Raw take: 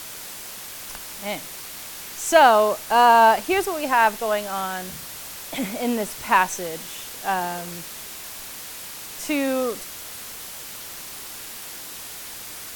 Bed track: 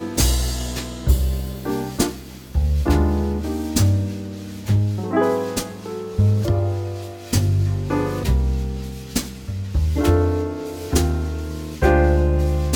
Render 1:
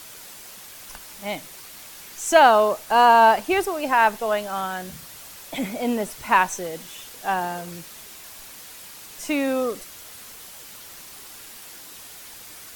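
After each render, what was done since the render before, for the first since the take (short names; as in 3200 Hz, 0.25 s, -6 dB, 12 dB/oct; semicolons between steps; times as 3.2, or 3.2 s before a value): denoiser 6 dB, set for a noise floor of -37 dBFS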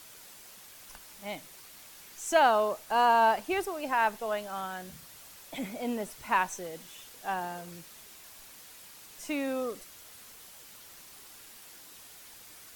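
gain -9 dB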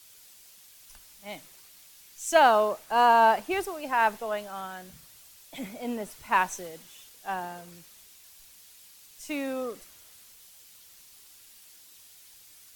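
three-band expander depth 40%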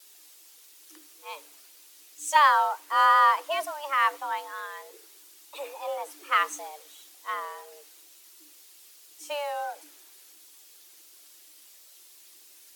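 vibrato 2.9 Hz 48 cents; frequency shift +290 Hz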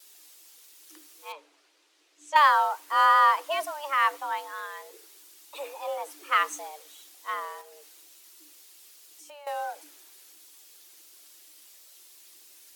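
1.32–2.36 tape spacing loss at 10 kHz 21 dB; 7.61–9.47 compressor, threshold -46 dBFS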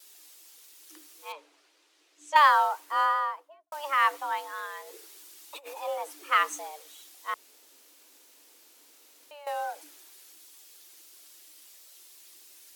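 2.62–3.72 studio fade out; 4.87–5.8 negative-ratio compressor -42 dBFS, ratio -0.5; 7.34–9.31 room tone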